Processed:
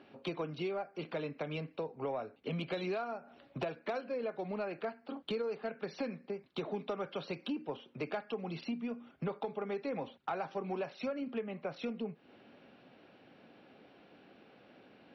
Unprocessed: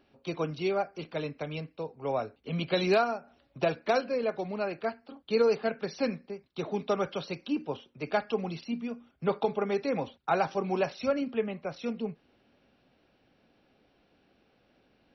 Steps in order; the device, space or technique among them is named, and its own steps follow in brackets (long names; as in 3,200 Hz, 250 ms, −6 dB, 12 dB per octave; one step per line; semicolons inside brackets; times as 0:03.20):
AM radio (band-pass filter 150–3,500 Hz; downward compressor 6 to 1, threshold −43 dBFS, peak gain reduction 21 dB; soft clipping −33.5 dBFS, distortion −24 dB)
level +8 dB